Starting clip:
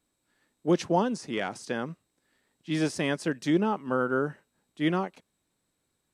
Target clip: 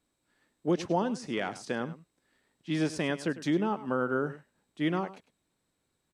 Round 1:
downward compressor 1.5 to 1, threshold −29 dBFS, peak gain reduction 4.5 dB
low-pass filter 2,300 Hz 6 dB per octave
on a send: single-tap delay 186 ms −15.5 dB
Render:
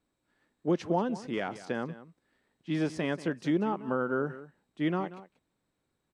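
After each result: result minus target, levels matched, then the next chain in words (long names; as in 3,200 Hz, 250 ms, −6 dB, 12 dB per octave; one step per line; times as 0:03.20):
echo 84 ms late; 8,000 Hz band −6.5 dB
downward compressor 1.5 to 1, threshold −29 dBFS, peak gain reduction 4.5 dB
low-pass filter 2,300 Hz 6 dB per octave
on a send: single-tap delay 102 ms −15.5 dB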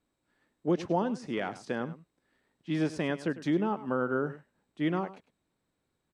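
8,000 Hz band −6.5 dB
downward compressor 1.5 to 1, threshold −29 dBFS, peak gain reduction 4.5 dB
low-pass filter 7,100 Hz 6 dB per octave
on a send: single-tap delay 102 ms −15.5 dB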